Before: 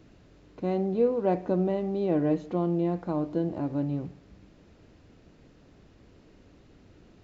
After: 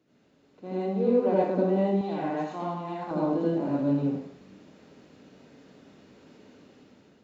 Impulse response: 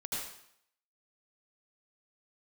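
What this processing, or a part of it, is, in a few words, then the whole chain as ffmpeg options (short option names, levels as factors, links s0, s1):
far laptop microphone: -filter_complex "[1:a]atrim=start_sample=2205[s0];[0:a][s0]afir=irnorm=-1:irlink=0,highpass=190,dynaudnorm=f=360:g=5:m=3.35,asettb=1/sr,asplit=3[s1][s2][s3];[s1]atrim=end=2.014[s4];[s2]atrim=start=2.01:end=3.11,asetpts=PTS-STARTPTS,afade=t=in:d=0.004:c=qsin,afade=t=out:st=1.096:d=0.004:c=qsin,lowshelf=f=650:t=q:w=3:g=-7[s5];[s3]atrim=start=3.106[s6];[s4][s5]acrossfade=d=0.004:c1=hsin:c2=qsin[s7];[s7][s6]acrossfade=d=0.004:c1=qsin:c2=hsin,volume=0.398"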